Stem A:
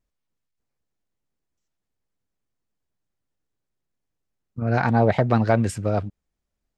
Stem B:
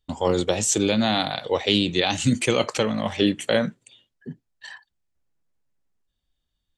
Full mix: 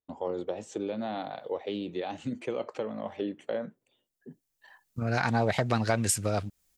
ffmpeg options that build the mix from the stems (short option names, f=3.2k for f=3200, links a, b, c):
-filter_complex "[0:a]crystalizer=i=7:c=0,adelay=400,volume=1.5dB[a];[1:a]bandpass=f=510:t=q:w=0.82:csg=0,volume=-6dB,asplit=2[b][c];[c]apad=whole_len=316636[d];[a][d]sidechaincompress=threshold=-47dB:ratio=6:attack=16:release=1070[e];[e][b]amix=inputs=2:normalize=0,acompressor=threshold=-31dB:ratio=2"